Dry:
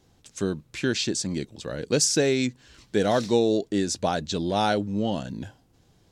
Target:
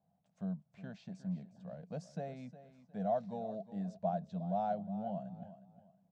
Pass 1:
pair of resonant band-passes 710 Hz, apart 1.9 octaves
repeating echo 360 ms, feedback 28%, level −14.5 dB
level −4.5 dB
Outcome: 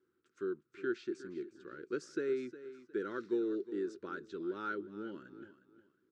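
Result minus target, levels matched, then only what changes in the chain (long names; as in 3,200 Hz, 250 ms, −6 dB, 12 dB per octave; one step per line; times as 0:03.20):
1,000 Hz band −9.0 dB
change: pair of resonant band-passes 350 Hz, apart 1.9 octaves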